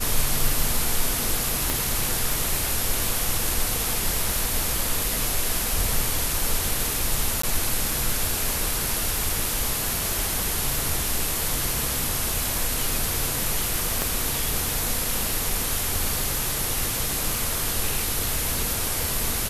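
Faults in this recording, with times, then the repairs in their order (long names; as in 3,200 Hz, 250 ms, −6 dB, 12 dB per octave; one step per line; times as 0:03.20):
0:01.70: click
0:07.42–0:07.43: drop-out 14 ms
0:14.02: click −8 dBFS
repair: click removal
repair the gap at 0:07.42, 14 ms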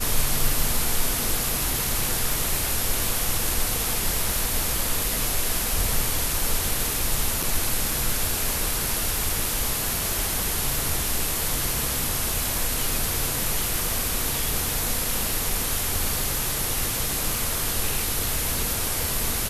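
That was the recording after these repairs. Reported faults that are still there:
0:01.70: click
0:14.02: click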